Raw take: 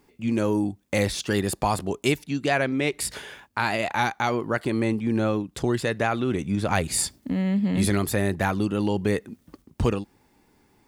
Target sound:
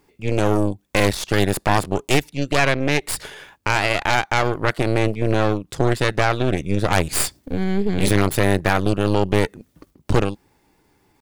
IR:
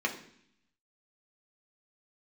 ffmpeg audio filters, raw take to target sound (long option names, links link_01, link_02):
-af "aeval=exprs='0.473*(cos(1*acos(clip(val(0)/0.473,-1,1)))-cos(1*PI/2))+0.15*(cos(6*acos(clip(val(0)/0.473,-1,1)))-cos(6*PI/2))':channel_layout=same,atempo=0.97,equalizer=frequency=230:width=7.8:gain=-10.5,volume=1.5dB"